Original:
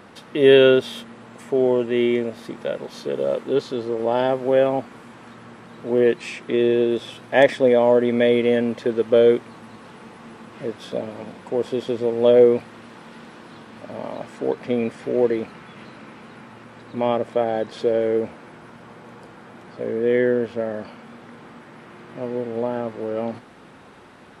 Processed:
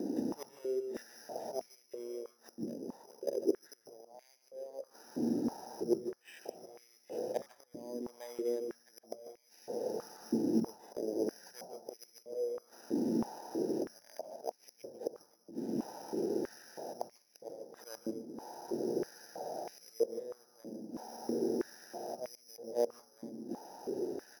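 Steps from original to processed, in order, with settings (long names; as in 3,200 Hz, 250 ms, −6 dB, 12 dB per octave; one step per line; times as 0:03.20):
adaptive Wiener filter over 41 samples
volume swells 698 ms
0:02.54–0:03.29: output level in coarse steps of 14 dB
gate with flip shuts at −31 dBFS, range −29 dB
slap from a distant wall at 260 metres, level −15 dB
convolution reverb RT60 0.35 s, pre-delay 143 ms, DRR 10 dB
bad sample-rate conversion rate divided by 8×, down none, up hold
high-pass on a step sequencer 3.1 Hz 280–2,200 Hz
level −3 dB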